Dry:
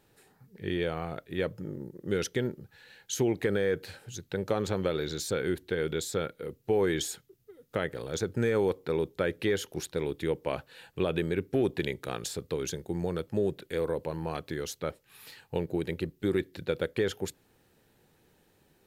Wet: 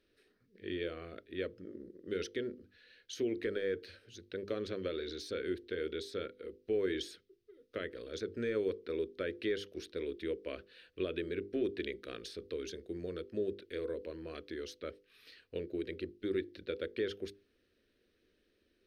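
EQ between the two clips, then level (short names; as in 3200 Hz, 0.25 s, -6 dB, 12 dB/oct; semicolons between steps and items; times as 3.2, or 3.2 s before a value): polynomial smoothing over 15 samples; notches 50/100/150/200/250/300/350/400/450/500 Hz; fixed phaser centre 350 Hz, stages 4; -5.0 dB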